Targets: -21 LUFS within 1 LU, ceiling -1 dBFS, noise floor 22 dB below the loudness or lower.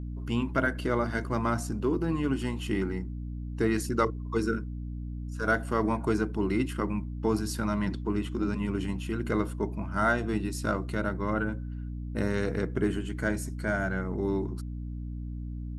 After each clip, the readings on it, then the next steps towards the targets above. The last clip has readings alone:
hum 60 Hz; harmonics up to 300 Hz; hum level -33 dBFS; loudness -30.5 LUFS; peak -11.5 dBFS; loudness target -21.0 LUFS
-> de-hum 60 Hz, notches 5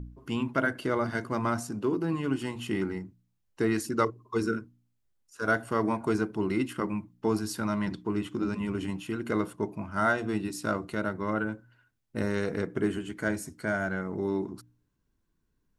hum none; loudness -31.0 LUFS; peak -12.0 dBFS; loudness target -21.0 LUFS
-> gain +10 dB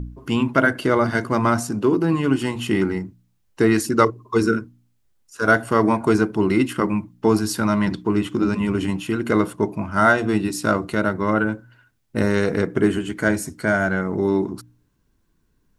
loudness -21.0 LUFS; peak -2.0 dBFS; noise floor -65 dBFS

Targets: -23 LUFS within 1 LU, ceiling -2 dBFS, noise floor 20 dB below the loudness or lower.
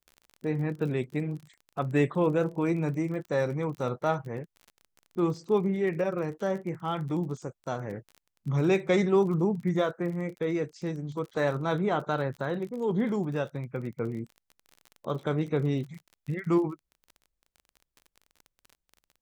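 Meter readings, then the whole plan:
ticks 31/s; loudness -29.5 LUFS; peak -12.0 dBFS; loudness target -23.0 LUFS
-> de-click; gain +6.5 dB

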